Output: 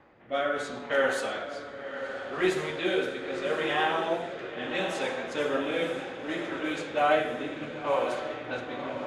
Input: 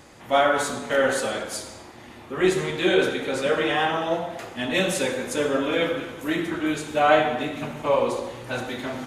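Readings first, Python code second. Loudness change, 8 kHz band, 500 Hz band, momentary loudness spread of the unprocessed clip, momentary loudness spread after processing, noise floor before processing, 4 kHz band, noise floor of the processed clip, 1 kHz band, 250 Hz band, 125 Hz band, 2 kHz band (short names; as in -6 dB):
-6.0 dB, -13.0 dB, -5.5 dB, 11 LU, 9 LU, -44 dBFS, -6.5 dB, -41 dBFS, -5.5 dB, -7.0 dB, -9.5 dB, -4.5 dB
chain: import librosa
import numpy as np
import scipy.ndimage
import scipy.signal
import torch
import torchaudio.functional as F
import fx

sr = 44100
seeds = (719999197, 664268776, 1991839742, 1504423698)

y = fx.rotary(x, sr, hz=0.7)
y = fx.peak_eq(y, sr, hz=9200.0, db=-8.5, octaves=1.7)
y = fx.echo_diffused(y, sr, ms=1030, feedback_pct=58, wet_db=-9.0)
y = fx.env_lowpass(y, sr, base_hz=1900.0, full_db=-20.0)
y = fx.low_shelf(y, sr, hz=320.0, db=-9.5)
y = y * 10.0 ** (-1.5 / 20.0)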